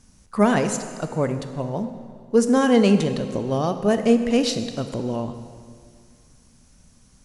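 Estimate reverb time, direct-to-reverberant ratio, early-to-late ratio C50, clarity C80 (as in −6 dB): 2.1 s, 8.0 dB, 9.0 dB, 10.5 dB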